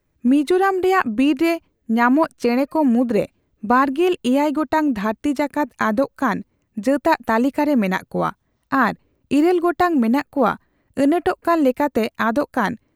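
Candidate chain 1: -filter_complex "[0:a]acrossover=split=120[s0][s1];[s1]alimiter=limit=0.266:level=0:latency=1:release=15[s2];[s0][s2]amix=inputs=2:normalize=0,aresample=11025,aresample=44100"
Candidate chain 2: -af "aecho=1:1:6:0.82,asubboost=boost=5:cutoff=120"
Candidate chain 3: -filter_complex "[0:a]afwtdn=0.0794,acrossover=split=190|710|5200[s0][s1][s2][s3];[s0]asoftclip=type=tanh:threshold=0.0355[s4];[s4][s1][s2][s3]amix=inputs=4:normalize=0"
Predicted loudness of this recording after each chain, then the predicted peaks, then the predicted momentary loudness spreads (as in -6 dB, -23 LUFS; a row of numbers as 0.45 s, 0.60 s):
-21.0 LUFS, -19.0 LUFS, -19.5 LUFS; -10.5 dBFS, -3.0 dBFS, -3.0 dBFS; 8 LU, 8 LU, 8 LU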